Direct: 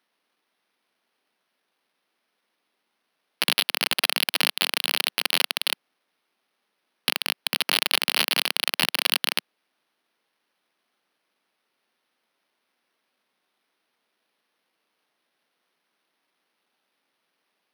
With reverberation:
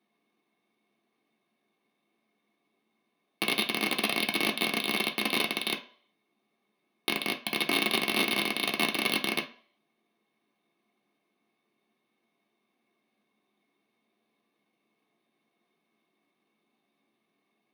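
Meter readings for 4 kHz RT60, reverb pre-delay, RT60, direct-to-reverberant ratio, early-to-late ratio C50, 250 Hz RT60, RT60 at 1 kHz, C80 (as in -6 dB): 0.45 s, 3 ms, 0.50 s, 1.0 dB, 14.0 dB, 0.40 s, 0.50 s, 18.5 dB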